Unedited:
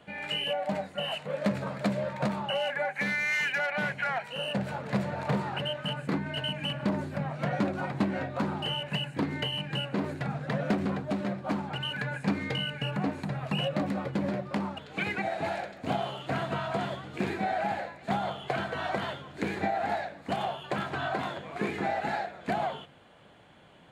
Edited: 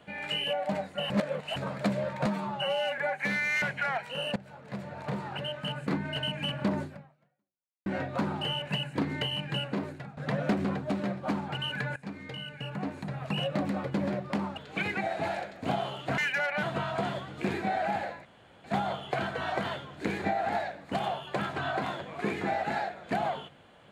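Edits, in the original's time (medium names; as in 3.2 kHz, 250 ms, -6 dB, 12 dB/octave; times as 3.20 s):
1.10–1.56 s: reverse
2.26–2.74 s: stretch 1.5×
3.38–3.83 s: move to 16.39 s
4.57–6.20 s: fade in, from -18 dB
7.04–8.07 s: fade out exponential
9.86–10.38 s: fade out, to -19 dB
12.17–13.93 s: fade in linear, from -14 dB
18.01 s: insert room tone 0.39 s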